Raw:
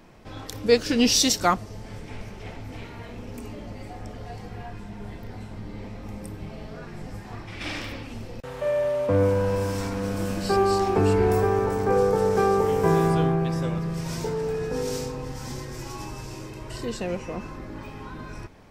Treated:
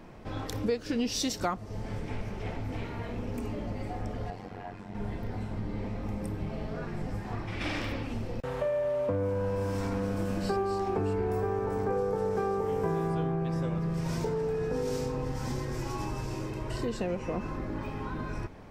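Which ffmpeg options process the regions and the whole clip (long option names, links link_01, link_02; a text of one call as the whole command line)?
ffmpeg -i in.wav -filter_complex "[0:a]asettb=1/sr,asplit=3[link_01][link_02][link_03];[link_01]atrim=end=4.304[link_04];[link_02]atrim=start=4.3:end=4.95,asetpts=PTS-STARTPTS,afade=type=in:duration=0.004:curve=qsin,afade=type=out:start_time=0.646:duration=0.004:curve=qsin,highpass=frequency=190:poles=1,highshelf=frequency=9000:gain=-4,tremolo=f=93:d=0.824[link_05];[link_03]atrim=start=4.946[link_06];[link_04][link_05]acrossfade=duration=0.004:curve1=hsin:curve2=qsin[link_07];[link_07][link_06]acrossfade=duration=0.004:curve1=qsin:curve2=hsin,highshelf=frequency=2500:gain=-8,acompressor=threshold=-31dB:ratio=5,volume=3dB" out.wav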